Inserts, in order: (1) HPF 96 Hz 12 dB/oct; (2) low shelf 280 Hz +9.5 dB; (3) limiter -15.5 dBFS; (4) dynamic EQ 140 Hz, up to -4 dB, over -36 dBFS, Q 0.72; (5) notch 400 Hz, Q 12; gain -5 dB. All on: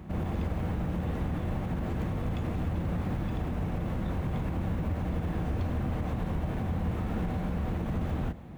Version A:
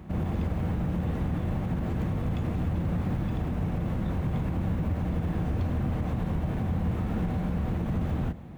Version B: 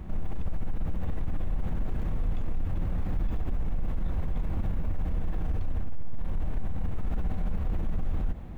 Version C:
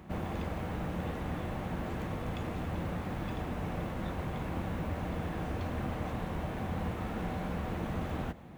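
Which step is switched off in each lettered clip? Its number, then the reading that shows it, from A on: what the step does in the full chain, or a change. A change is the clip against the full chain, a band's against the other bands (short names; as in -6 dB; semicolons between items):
4, 125 Hz band +3.0 dB; 1, 125 Hz band +4.0 dB; 2, 125 Hz band -6.5 dB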